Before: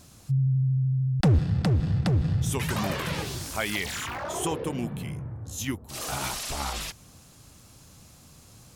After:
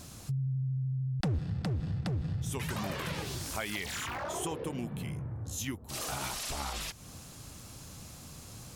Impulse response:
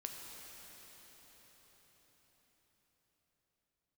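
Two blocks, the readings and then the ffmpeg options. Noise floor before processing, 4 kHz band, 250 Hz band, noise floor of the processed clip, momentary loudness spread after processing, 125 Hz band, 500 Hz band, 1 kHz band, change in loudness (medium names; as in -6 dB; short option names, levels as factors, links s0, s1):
-53 dBFS, -5.0 dB, -8.0 dB, -49 dBFS, 14 LU, -8.5 dB, -7.0 dB, -6.0 dB, -7.5 dB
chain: -af "acompressor=threshold=0.00794:ratio=2.5,volume=1.58"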